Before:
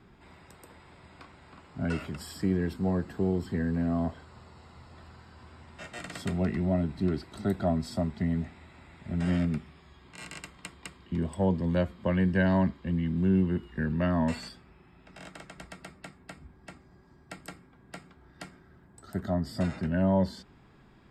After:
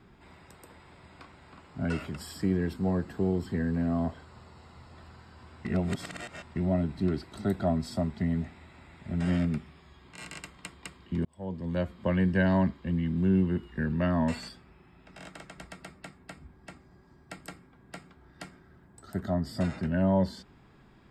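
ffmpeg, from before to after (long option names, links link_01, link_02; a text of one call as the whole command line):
ffmpeg -i in.wav -filter_complex "[0:a]asplit=4[link_01][link_02][link_03][link_04];[link_01]atrim=end=5.652[link_05];[link_02]atrim=start=5.648:end=6.562,asetpts=PTS-STARTPTS,areverse[link_06];[link_03]atrim=start=6.558:end=11.25,asetpts=PTS-STARTPTS,afade=type=out:start_time=4.688:duration=0.004:curve=hsin[link_07];[link_04]atrim=start=11.25,asetpts=PTS-STARTPTS,afade=type=in:duration=0.77[link_08];[link_05][link_06]acrossfade=duration=0.004:curve1=hsin:curve2=hsin[link_09];[link_07][link_08]concat=n=2:v=0:a=1[link_10];[link_09][link_10]acrossfade=duration=0.004:curve1=hsin:curve2=hsin" out.wav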